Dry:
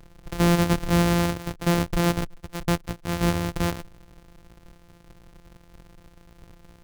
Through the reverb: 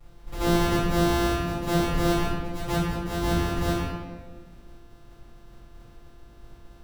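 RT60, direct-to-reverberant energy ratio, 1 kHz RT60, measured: 1.4 s, -15.0 dB, 1.3 s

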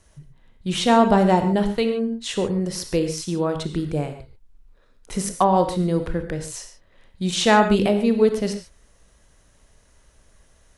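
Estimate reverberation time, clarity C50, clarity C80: not exponential, 8.5 dB, 10.5 dB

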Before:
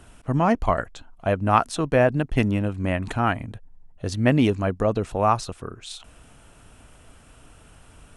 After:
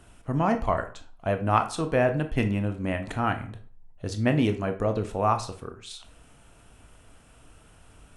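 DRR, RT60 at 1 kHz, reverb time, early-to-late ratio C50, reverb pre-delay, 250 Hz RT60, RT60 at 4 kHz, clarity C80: 7.0 dB, 0.45 s, 0.45 s, 12.0 dB, 18 ms, 0.45 s, 0.30 s, 16.5 dB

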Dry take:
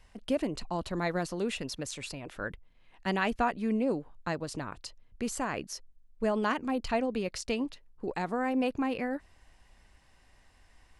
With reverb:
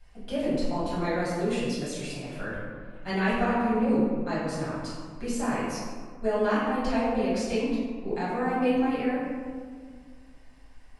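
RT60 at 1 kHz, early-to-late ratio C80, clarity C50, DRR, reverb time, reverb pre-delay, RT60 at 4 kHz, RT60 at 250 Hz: 1.7 s, 1.0 dB, -1.5 dB, -10.5 dB, 1.9 s, 3 ms, 0.90 s, 2.3 s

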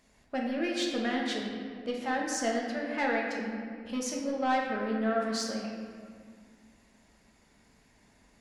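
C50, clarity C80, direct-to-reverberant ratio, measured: 1.5 dB, 3.0 dB, -2.0 dB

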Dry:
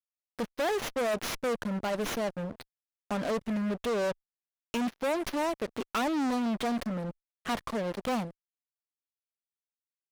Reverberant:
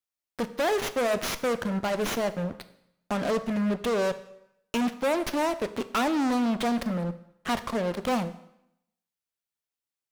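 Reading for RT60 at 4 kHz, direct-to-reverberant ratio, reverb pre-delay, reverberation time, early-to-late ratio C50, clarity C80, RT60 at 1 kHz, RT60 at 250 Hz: 0.75 s, 11.5 dB, 7 ms, 0.75 s, 14.5 dB, 17.0 dB, 0.80 s, 0.80 s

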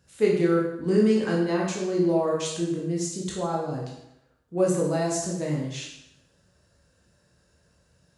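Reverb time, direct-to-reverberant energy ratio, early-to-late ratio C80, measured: 0.80 s, -3.5 dB, 6.0 dB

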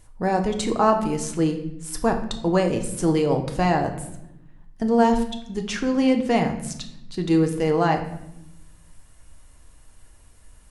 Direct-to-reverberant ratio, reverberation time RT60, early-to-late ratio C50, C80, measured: 4.0 dB, 0.85 s, 9.5 dB, 12.0 dB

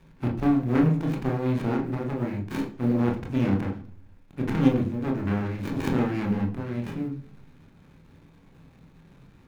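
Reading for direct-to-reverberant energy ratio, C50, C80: 1.0 dB, 10.5 dB, 15.0 dB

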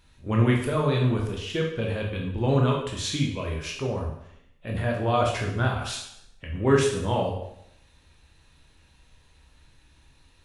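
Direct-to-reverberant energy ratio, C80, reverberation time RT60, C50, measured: -1.0 dB, 7.0 dB, 0.70 s, 4.5 dB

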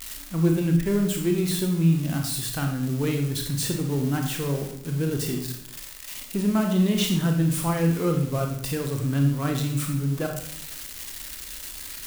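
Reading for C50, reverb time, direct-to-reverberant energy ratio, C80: 5.5 dB, 0.70 s, 2.5 dB, 9.0 dB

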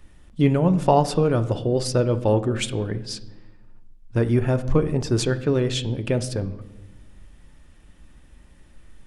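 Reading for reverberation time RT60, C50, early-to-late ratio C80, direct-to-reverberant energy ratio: 1.1 s, 15.5 dB, 18.0 dB, 9.5 dB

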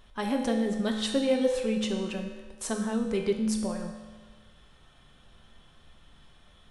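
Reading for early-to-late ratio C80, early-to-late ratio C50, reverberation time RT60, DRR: 6.5 dB, 4.5 dB, 1.4 s, 1.5 dB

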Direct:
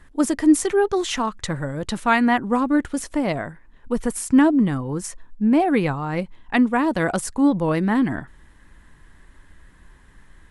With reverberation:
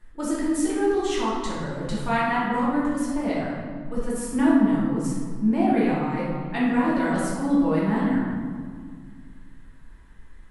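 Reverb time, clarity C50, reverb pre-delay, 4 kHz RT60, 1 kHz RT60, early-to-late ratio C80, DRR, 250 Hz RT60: 1.9 s, -1.5 dB, 3 ms, 1.1 s, 1.8 s, 1.5 dB, -8.5 dB, 2.7 s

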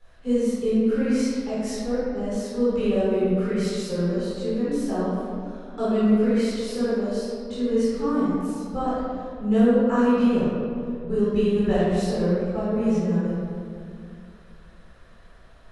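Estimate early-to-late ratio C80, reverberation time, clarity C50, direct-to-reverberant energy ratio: -2.0 dB, 2.3 s, -5.0 dB, -11.5 dB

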